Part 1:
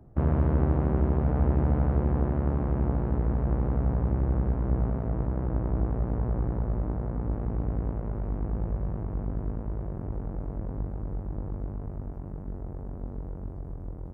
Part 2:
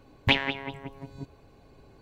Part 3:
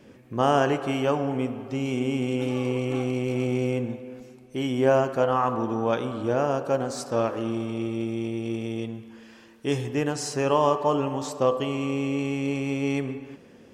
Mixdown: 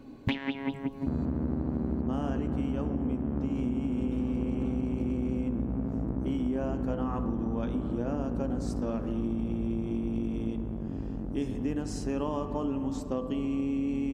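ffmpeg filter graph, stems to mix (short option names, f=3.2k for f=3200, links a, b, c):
-filter_complex "[0:a]adelay=900,volume=-6dB[a];[1:a]volume=0dB[b];[2:a]adelay=1700,volume=-11.5dB[c];[a][b][c]amix=inputs=3:normalize=0,equalizer=f=250:t=o:w=0.84:g=14.5,acompressor=threshold=-26dB:ratio=12"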